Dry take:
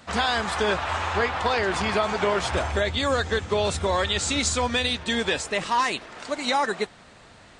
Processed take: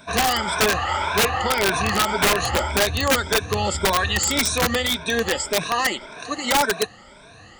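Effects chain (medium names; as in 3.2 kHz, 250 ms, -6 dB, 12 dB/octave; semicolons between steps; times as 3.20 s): drifting ripple filter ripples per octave 1.6, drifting +1.8 Hz, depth 19 dB; integer overflow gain 11.5 dB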